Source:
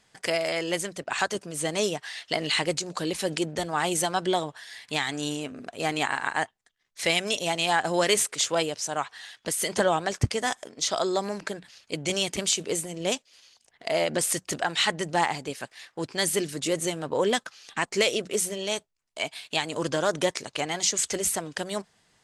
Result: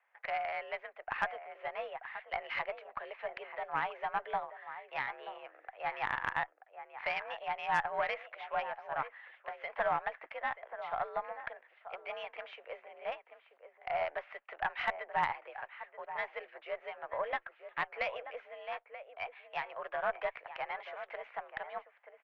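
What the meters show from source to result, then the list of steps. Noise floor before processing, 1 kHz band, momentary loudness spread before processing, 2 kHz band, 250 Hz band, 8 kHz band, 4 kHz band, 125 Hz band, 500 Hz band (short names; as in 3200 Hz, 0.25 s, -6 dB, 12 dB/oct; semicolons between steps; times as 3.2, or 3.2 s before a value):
-68 dBFS, -5.5 dB, 10 LU, -7.5 dB, -27.5 dB, under -40 dB, -22.0 dB, -23.5 dB, -12.5 dB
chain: outdoor echo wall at 160 m, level -10 dB; mistuned SSB +63 Hz 560–2300 Hz; added harmonics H 4 -17 dB, 6 -26 dB, 7 -44 dB, 8 -42 dB, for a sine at -11.5 dBFS; gain -6.5 dB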